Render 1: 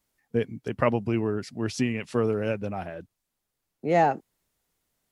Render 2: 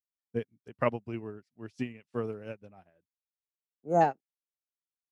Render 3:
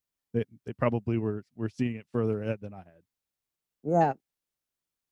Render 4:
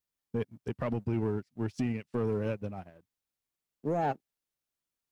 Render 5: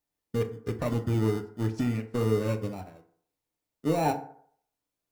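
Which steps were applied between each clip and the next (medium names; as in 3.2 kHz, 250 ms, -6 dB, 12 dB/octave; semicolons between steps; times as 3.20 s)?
time-frequency box 3.81–4.01 s, 1.6–5.9 kHz -24 dB; upward expansion 2.5:1, over -43 dBFS; trim -1.5 dB
bass shelf 320 Hz +8 dB; in parallel at 0 dB: compressor with a negative ratio -33 dBFS, ratio -1; on the sum: trim -2.5 dB
peak limiter -23 dBFS, peak gain reduction 11.5 dB; waveshaping leveller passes 1
in parallel at -6 dB: sample-and-hold 27×; on the sum: FDN reverb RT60 0.59 s, low-frequency decay 0.8×, high-frequency decay 0.5×, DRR 5 dB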